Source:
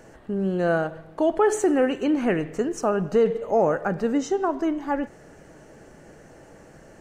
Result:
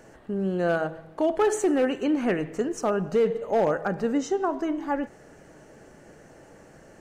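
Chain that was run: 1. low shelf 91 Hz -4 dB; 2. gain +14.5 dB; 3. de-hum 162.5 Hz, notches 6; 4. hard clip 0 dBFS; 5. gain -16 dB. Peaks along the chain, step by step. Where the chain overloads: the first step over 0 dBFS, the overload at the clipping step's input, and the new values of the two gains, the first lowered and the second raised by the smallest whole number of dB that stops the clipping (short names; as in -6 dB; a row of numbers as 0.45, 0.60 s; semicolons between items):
-10.0, +4.5, +4.5, 0.0, -16.0 dBFS; step 2, 4.5 dB; step 2 +9.5 dB, step 5 -11 dB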